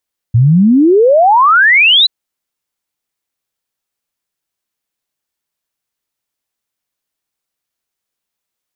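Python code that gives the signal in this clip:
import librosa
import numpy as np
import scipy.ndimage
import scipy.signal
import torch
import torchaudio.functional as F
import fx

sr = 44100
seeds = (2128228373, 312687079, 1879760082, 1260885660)

y = fx.ess(sr, length_s=1.73, from_hz=110.0, to_hz=4100.0, level_db=-4.5)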